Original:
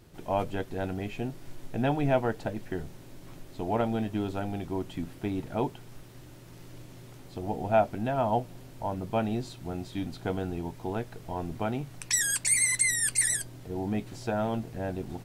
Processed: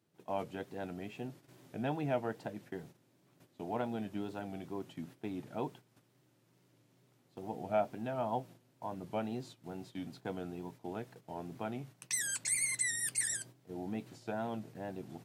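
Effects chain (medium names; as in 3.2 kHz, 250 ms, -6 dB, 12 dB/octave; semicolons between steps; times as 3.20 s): wow and flutter 83 cents; gate -41 dBFS, range -11 dB; high-pass 120 Hz 24 dB/octave; trim -8.5 dB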